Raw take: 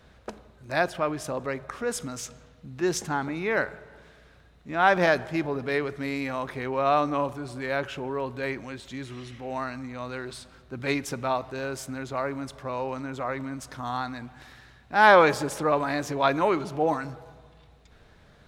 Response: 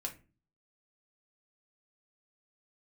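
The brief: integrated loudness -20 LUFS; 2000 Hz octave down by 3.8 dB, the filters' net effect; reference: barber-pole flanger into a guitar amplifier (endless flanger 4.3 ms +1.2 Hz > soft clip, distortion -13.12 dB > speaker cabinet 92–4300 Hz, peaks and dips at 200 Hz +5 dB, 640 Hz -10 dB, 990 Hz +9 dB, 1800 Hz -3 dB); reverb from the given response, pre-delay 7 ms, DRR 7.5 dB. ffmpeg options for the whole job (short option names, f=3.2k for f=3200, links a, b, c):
-filter_complex "[0:a]equalizer=f=2k:t=o:g=-4,asplit=2[a][b];[1:a]atrim=start_sample=2205,adelay=7[c];[b][c]afir=irnorm=-1:irlink=0,volume=-7dB[d];[a][d]amix=inputs=2:normalize=0,asplit=2[e][f];[f]adelay=4.3,afreqshift=1.2[g];[e][g]amix=inputs=2:normalize=1,asoftclip=threshold=-17dB,highpass=92,equalizer=f=200:t=q:w=4:g=5,equalizer=f=640:t=q:w=4:g=-10,equalizer=f=990:t=q:w=4:g=9,equalizer=f=1.8k:t=q:w=4:g=-3,lowpass=f=4.3k:w=0.5412,lowpass=f=4.3k:w=1.3066,volume=10.5dB"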